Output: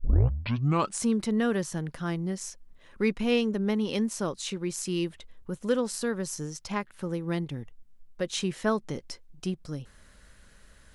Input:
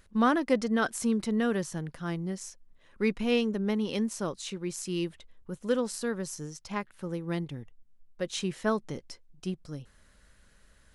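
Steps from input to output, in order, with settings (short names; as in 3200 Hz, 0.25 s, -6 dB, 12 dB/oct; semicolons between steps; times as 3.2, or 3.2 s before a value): tape start at the beginning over 1.03 s; in parallel at -1.5 dB: compressor, threshold -38 dBFS, peak gain reduction 19 dB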